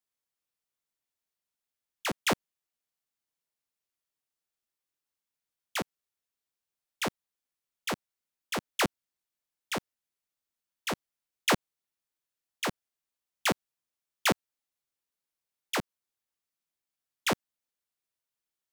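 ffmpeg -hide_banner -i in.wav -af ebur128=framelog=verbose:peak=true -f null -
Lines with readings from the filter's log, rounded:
Integrated loudness:
  I:         -33.0 LUFS
  Threshold: -43.1 LUFS
Loudness range:
  LRA:         7.0 LU
  Threshold: -57.1 LUFS
  LRA low:   -41.5 LUFS
  LRA high:  -34.5 LUFS
True peak:
  Peak:      -16.1 dBFS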